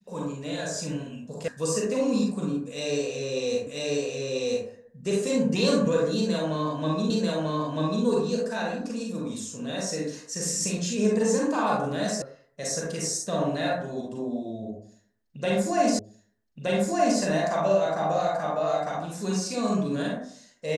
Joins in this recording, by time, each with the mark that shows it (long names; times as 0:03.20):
0:01.48: cut off before it has died away
0:03.67: the same again, the last 0.99 s
0:07.10: the same again, the last 0.94 s
0:12.22: cut off before it has died away
0:15.99: the same again, the last 1.22 s